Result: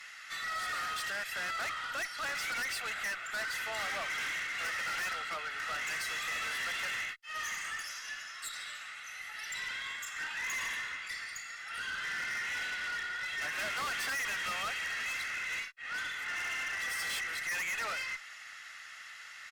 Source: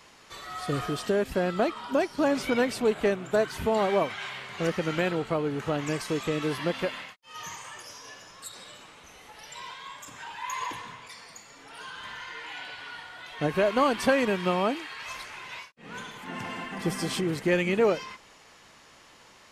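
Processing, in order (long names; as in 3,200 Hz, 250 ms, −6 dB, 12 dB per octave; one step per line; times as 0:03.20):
high-pass with resonance 1,700 Hz, resonance Q 3.6
comb filter 1.5 ms, depth 60%
tube saturation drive 35 dB, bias 0.2
level +1.5 dB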